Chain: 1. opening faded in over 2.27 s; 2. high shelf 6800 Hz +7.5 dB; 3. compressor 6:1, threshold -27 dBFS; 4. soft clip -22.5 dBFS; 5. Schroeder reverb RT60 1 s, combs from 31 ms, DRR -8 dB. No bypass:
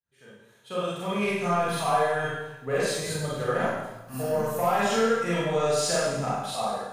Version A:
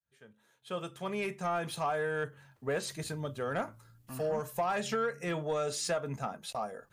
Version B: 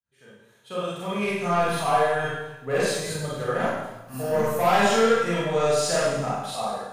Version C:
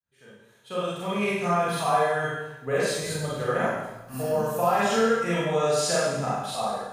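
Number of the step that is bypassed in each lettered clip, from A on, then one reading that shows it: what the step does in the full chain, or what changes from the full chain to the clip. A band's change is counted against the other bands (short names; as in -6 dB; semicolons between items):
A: 5, crest factor change -2.5 dB; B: 3, mean gain reduction 1.5 dB; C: 4, distortion -21 dB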